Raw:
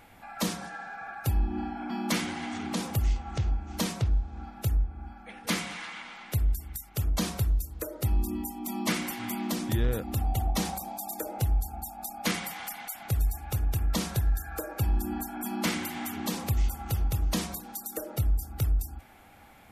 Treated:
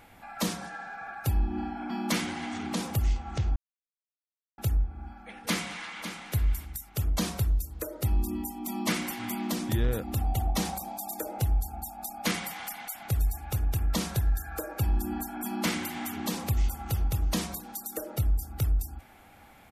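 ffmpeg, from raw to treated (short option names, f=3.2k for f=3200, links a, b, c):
-filter_complex "[0:a]asplit=2[a][b];[b]afade=t=in:st=5.43:d=0.01,afade=t=out:st=6.1:d=0.01,aecho=0:1:550|1100:0.316228|0.0316228[c];[a][c]amix=inputs=2:normalize=0,asplit=3[d][e][f];[d]atrim=end=3.56,asetpts=PTS-STARTPTS,afade=t=out:st=3.556:d=0.004:c=hsin[g];[e]atrim=start=3.56:end=4.58,asetpts=PTS-STARTPTS,volume=0[h];[f]atrim=start=4.58,asetpts=PTS-STARTPTS,afade=t=in:d=0.004:c=hsin[i];[g][h][i]concat=n=3:v=0:a=1"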